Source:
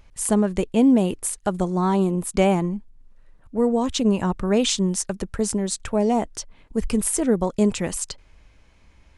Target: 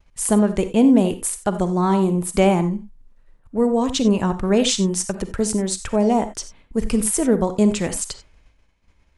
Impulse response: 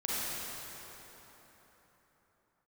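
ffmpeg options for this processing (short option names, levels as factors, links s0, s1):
-filter_complex "[0:a]agate=range=0.0224:threshold=0.00631:ratio=3:detection=peak,asplit=2[s0][s1];[1:a]atrim=start_sample=2205,atrim=end_sample=4410[s2];[s1][s2]afir=irnorm=-1:irlink=0,volume=0.355[s3];[s0][s3]amix=inputs=2:normalize=0"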